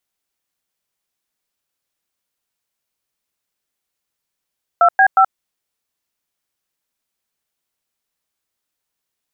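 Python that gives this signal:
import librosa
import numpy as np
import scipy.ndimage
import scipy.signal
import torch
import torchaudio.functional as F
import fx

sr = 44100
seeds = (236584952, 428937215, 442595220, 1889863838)

y = fx.dtmf(sr, digits='2B5', tone_ms=77, gap_ms=103, level_db=-10.0)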